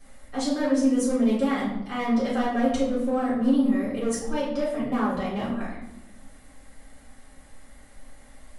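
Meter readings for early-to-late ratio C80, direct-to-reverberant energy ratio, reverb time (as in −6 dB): 7.5 dB, −9.0 dB, 0.90 s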